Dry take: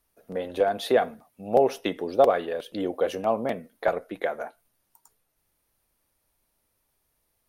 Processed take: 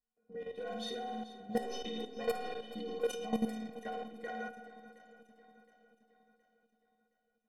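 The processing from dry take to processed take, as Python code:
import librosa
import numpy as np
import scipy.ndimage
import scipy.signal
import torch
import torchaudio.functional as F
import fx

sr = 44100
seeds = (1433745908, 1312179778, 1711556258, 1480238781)

p1 = fx.clip_asym(x, sr, top_db=-14.0, bottom_db=-12.0)
p2 = fx.leveller(p1, sr, passes=1)
p3 = fx.peak_eq(p2, sr, hz=1100.0, db=-7.5, octaves=2.2)
p4 = fx.stiff_resonator(p3, sr, f0_hz=220.0, decay_s=0.51, stiffness=0.03)
p5 = fx.room_flutter(p4, sr, wall_m=9.4, rt60_s=0.94)
p6 = fx.level_steps(p5, sr, step_db=12)
p7 = fx.env_lowpass(p6, sr, base_hz=1500.0, full_db=-35.5)
p8 = fx.high_shelf(p7, sr, hz=3700.0, db=10.5)
p9 = p8 + fx.echo_swing(p8, sr, ms=718, ratio=1.5, feedback_pct=42, wet_db=-16, dry=0)
y = p9 * librosa.db_to_amplitude(7.5)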